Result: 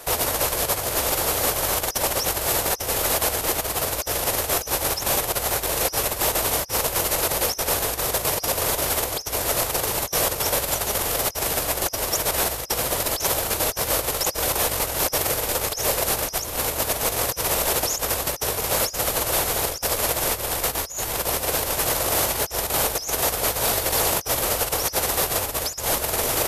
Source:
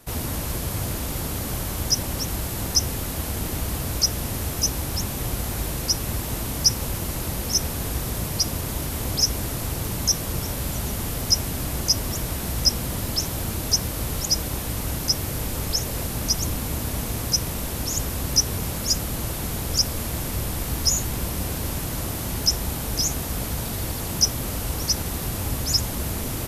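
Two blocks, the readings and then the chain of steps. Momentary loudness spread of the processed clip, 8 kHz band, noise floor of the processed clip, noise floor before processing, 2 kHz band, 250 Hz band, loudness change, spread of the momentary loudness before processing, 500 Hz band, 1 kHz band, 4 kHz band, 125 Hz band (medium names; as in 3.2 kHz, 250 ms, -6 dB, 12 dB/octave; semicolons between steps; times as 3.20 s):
3 LU, +2.5 dB, -34 dBFS, -30 dBFS, +8.0 dB, -4.0 dB, +3.0 dB, 7 LU, +9.0 dB, +9.5 dB, -1.0 dB, -7.0 dB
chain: compressor with a negative ratio -29 dBFS, ratio -0.5; resonant low shelf 340 Hz -12.5 dB, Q 1.5; trim +8.5 dB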